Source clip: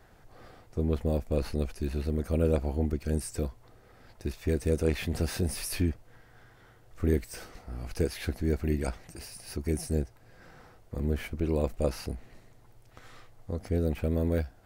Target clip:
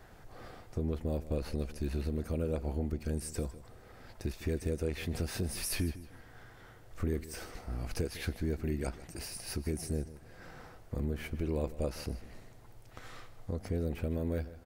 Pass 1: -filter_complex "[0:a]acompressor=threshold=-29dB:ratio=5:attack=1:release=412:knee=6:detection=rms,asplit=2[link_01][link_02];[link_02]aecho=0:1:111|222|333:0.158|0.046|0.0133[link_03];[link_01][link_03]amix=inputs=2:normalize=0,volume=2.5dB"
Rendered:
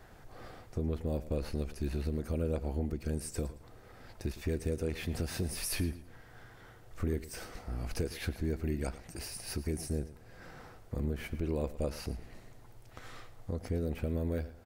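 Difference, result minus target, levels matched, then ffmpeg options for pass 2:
echo 43 ms early
-filter_complex "[0:a]acompressor=threshold=-29dB:ratio=5:attack=1:release=412:knee=6:detection=rms,asplit=2[link_01][link_02];[link_02]aecho=0:1:154|308|462:0.158|0.046|0.0133[link_03];[link_01][link_03]amix=inputs=2:normalize=0,volume=2.5dB"

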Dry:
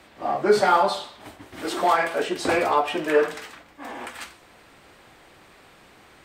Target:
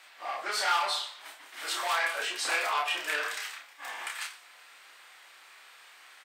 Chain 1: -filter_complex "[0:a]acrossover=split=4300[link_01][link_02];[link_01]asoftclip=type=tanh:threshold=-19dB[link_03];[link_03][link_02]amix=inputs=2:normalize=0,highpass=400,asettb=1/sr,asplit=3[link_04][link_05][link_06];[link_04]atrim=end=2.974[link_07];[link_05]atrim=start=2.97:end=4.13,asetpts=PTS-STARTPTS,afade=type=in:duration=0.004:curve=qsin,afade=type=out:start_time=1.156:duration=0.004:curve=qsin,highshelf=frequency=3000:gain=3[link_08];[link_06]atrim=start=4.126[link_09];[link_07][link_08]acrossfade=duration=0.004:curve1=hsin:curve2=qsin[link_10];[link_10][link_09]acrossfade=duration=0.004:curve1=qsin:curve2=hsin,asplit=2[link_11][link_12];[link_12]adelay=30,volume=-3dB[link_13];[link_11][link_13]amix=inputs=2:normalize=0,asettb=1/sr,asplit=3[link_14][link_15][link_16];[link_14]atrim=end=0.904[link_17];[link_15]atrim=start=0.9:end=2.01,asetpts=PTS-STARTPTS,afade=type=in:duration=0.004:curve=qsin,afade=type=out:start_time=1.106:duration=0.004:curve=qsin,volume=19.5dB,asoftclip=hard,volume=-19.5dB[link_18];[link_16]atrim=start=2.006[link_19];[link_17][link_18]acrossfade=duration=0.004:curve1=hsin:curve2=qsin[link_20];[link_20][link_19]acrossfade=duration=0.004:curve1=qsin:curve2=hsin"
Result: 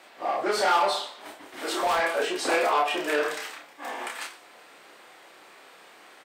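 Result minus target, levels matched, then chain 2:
500 Hz band +9.0 dB
-filter_complex "[0:a]acrossover=split=4300[link_01][link_02];[link_01]asoftclip=type=tanh:threshold=-19dB[link_03];[link_03][link_02]amix=inputs=2:normalize=0,highpass=1300,asettb=1/sr,asplit=3[link_04][link_05][link_06];[link_04]atrim=end=2.974[link_07];[link_05]atrim=start=2.97:end=4.13,asetpts=PTS-STARTPTS,afade=type=in:duration=0.004:curve=qsin,afade=type=out:start_time=1.156:duration=0.004:curve=qsin,highshelf=frequency=3000:gain=3[link_08];[link_06]atrim=start=4.126[link_09];[link_07][link_08]acrossfade=duration=0.004:curve1=hsin:curve2=qsin[link_10];[link_10][link_09]acrossfade=duration=0.004:curve1=qsin:curve2=hsin,asplit=2[link_11][link_12];[link_12]adelay=30,volume=-3dB[link_13];[link_11][link_13]amix=inputs=2:normalize=0,asettb=1/sr,asplit=3[link_14][link_15][link_16];[link_14]atrim=end=0.904[link_17];[link_15]atrim=start=0.9:end=2.01,asetpts=PTS-STARTPTS,afade=type=in:duration=0.004:curve=qsin,afade=type=out:start_time=1.106:duration=0.004:curve=qsin,volume=19.5dB,asoftclip=hard,volume=-19.5dB[link_18];[link_16]atrim=start=2.006[link_19];[link_17][link_18]acrossfade=duration=0.004:curve1=hsin:curve2=qsin[link_20];[link_20][link_19]acrossfade=duration=0.004:curve1=qsin:curve2=hsin"

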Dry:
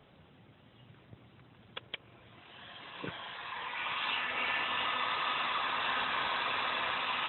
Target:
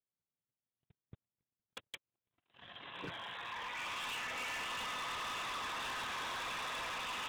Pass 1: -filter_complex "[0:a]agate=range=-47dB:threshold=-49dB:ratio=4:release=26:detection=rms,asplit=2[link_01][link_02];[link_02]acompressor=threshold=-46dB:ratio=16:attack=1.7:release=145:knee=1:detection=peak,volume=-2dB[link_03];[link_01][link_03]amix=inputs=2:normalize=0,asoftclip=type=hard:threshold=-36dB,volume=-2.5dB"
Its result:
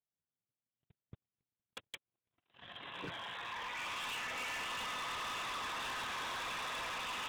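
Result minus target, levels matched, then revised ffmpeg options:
downward compressor: peak gain reduction −6 dB
-filter_complex "[0:a]agate=range=-47dB:threshold=-49dB:ratio=4:release=26:detection=rms,asplit=2[link_01][link_02];[link_02]acompressor=threshold=-52.5dB:ratio=16:attack=1.7:release=145:knee=1:detection=peak,volume=-2dB[link_03];[link_01][link_03]amix=inputs=2:normalize=0,asoftclip=type=hard:threshold=-36dB,volume=-2.5dB"

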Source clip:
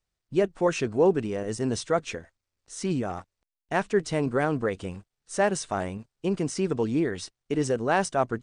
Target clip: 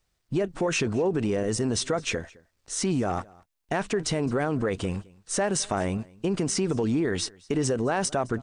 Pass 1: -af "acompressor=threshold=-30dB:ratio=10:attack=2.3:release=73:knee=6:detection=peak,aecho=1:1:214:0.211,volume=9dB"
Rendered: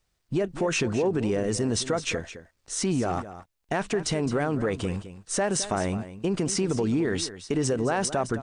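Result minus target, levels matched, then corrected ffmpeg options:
echo-to-direct +11 dB
-af "acompressor=threshold=-30dB:ratio=10:attack=2.3:release=73:knee=6:detection=peak,aecho=1:1:214:0.0596,volume=9dB"

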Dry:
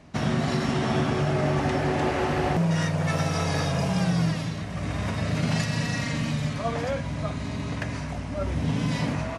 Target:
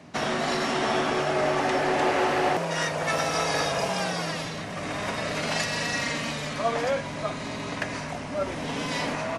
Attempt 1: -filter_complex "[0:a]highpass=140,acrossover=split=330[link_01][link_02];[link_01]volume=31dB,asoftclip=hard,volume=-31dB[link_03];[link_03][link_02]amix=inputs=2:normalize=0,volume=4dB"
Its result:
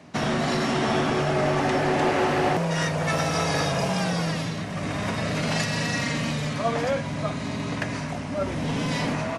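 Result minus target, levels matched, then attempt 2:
gain into a clipping stage and back: distortion −5 dB
-filter_complex "[0:a]highpass=140,acrossover=split=330[link_01][link_02];[link_01]volume=42.5dB,asoftclip=hard,volume=-42.5dB[link_03];[link_03][link_02]amix=inputs=2:normalize=0,volume=4dB"

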